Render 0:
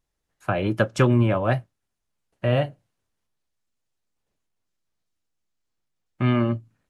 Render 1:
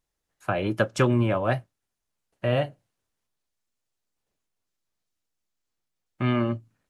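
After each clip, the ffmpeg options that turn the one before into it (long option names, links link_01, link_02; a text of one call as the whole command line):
ffmpeg -i in.wav -af "bass=frequency=250:gain=-3,treble=frequency=4000:gain=2,volume=-1.5dB" out.wav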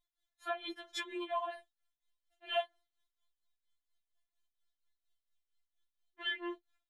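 ffmpeg -i in.wav -af "tremolo=f=4.3:d=0.84,superequalizer=6b=0.316:11b=1.78:13b=3.16,afftfilt=real='re*4*eq(mod(b,16),0)':imag='im*4*eq(mod(b,16),0)':win_size=2048:overlap=0.75,volume=-4dB" out.wav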